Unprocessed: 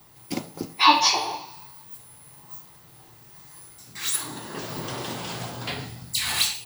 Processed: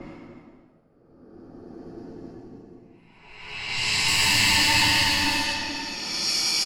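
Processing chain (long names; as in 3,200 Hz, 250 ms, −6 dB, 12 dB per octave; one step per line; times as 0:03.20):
lower of the sound and its delayed copy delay 0.4 ms
single-tap delay 659 ms −4 dB
reverb reduction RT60 1.9 s
extreme stretch with random phases 10×, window 0.25 s, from 0:00.41
low-pass that shuts in the quiet parts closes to 990 Hz, open at −16.5 dBFS
high-shelf EQ 3,100 Hz +10.5 dB
level −6 dB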